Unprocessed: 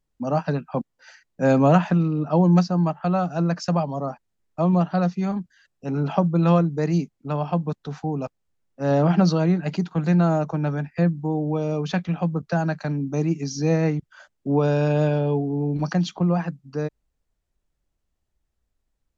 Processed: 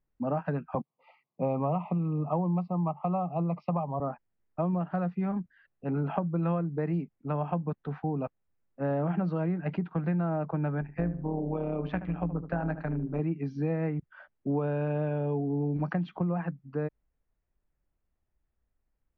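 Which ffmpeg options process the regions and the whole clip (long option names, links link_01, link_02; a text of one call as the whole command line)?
ffmpeg -i in.wav -filter_complex "[0:a]asettb=1/sr,asplit=3[link_01][link_02][link_03];[link_01]atrim=end=0.754[link_04];[link_02]atrim=start=0.75:end=4,asetpts=PTS-STARTPTS,afade=type=in:duration=0.004:curve=qsin,afade=type=out:start_time=3.246:duration=0.004:curve=qsin,asuperstop=centerf=1600:order=12:qfactor=2.2,highpass=frequency=130:width=0.5412,highpass=frequency=130:width=1.3066,equalizer=frequency=140:width_type=q:width=4:gain=4,equalizer=frequency=290:width_type=q:width=4:gain=-5,equalizer=frequency=790:width_type=q:width=4:gain=4,equalizer=frequency=1100:width_type=q:width=4:gain=5,equalizer=frequency=1700:width_type=q:width=4:gain=-8,equalizer=frequency=3300:width_type=q:width=4:gain=-3,lowpass=frequency=4700:width=0.5412,lowpass=frequency=4700:width=1.3066[link_05];[link_03]atrim=start=3.996[link_06];[link_04][link_05]acrossfade=duration=0.004:curve1=hsin:curve2=qsin[link_07];[link_07][link_06]acrossfade=duration=0.004:curve1=qsin:curve2=hsin,asettb=1/sr,asplit=3[link_08][link_09][link_10];[link_08]atrim=end=10.814[link_11];[link_09]atrim=start=10.81:end=13.2,asetpts=PTS-STARTPTS,afade=type=in:duration=0.004:curve=qsin,afade=type=out:start_time=2.386:duration=0.004:curve=qsin,tremolo=f=120:d=0.621,asplit=2[link_12][link_13];[link_13]adelay=75,lowpass=frequency=1400:poles=1,volume=-11.5dB,asplit=2[link_14][link_15];[link_15]adelay=75,lowpass=frequency=1400:poles=1,volume=0.37,asplit=2[link_16][link_17];[link_17]adelay=75,lowpass=frequency=1400:poles=1,volume=0.37,asplit=2[link_18][link_19];[link_19]adelay=75,lowpass=frequency=1400:poles=1,volume=0.37[link_20];[link_12][link_14][link_16][link_18][link_20]amix=inputs=5:normalize=0,atrim=end_sample=105399[link_21];[link_10]atrim=start=13.196[link_22];[link_11][link_21]acrossfade=duration=0.004:curve1=hsin:curve2=qsin[link_23];[link_23][link_22]acrossfade=duration=0.004:curve1=qsin:curve2=hsin,lowpass=frequency=2400:width=0.5412,lowpass=frequency=2400:width=1.3066,acompressor=threshold=-23dB:ratio=6,volume=-3dB" out.wav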